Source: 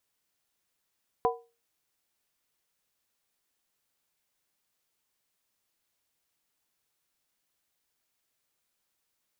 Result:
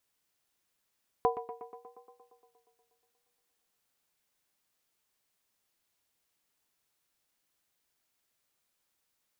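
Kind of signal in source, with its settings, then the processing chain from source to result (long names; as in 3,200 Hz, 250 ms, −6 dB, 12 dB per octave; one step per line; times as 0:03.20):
struck skin, lowest mode 466 Hz, modes 3, decay 0.31 s, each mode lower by 0.5 dB, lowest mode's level −22 dB
tape delay 118 ms, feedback 77%, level −11 dB, low-pass 2,300 Hz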